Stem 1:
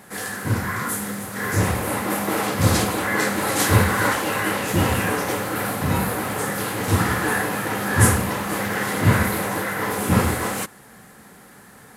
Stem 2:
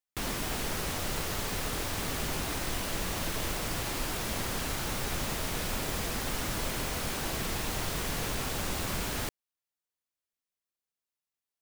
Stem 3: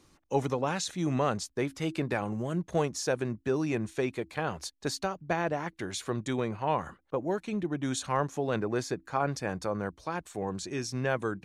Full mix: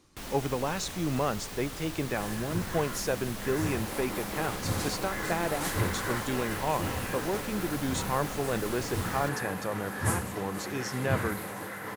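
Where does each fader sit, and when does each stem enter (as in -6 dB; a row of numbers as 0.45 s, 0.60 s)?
-13.5 dB, -7.0 dB, -1.0 dB; 2.05 s, 0.00 s, 0.00 s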